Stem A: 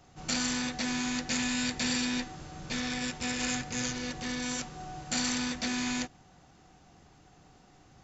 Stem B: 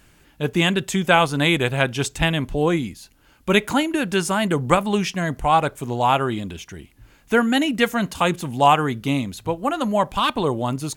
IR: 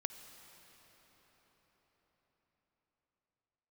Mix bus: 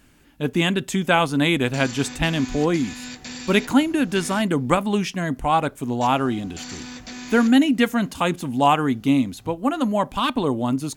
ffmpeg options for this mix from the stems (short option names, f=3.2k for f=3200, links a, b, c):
-filter_complex "[0:a]alimiter=limit=-21.5dB:level=0:latency=1:release=185,adelay=1450,volume=-4.5dB,asplit=3[a][b][c];[a]atrim=end=4.42,asetpts=PTS-STARTPTS,afade=t=out:st=4.416:d=0.004:c=hsin[d];[b]atrim=start=4.42:end=6.01,asetpts=PTS-STARTPTS,volume=0[e];[c]atrim=start=6.01,asetpts=PTS-STARTPTS,afade=t=in:d=0.004:c=hsin[f];[d][e][f]concat=n=3:v=0:a=1,asplit=2[g][h];[h]volume=-12.5dB[i];[1:a]equalizer=f=260:t=o:w=0.38:g=10,volume=-2.5dB[j];[2:a]atrim=start_sample=2205[k];[i][k]afir=irnorm=-1:irlink=0[l];[g][j][l]amix=inputs=3:normalize=0"